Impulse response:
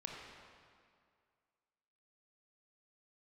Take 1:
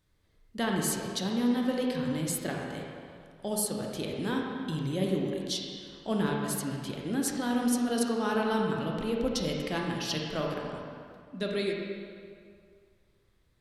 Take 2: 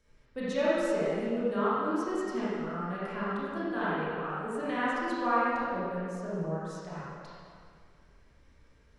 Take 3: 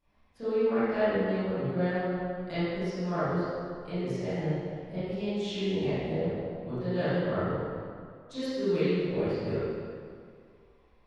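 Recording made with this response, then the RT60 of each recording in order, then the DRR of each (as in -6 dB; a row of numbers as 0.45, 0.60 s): 1; 2.1, 2.2, 2.2 s; -1.0, -10.5, -18.0 dB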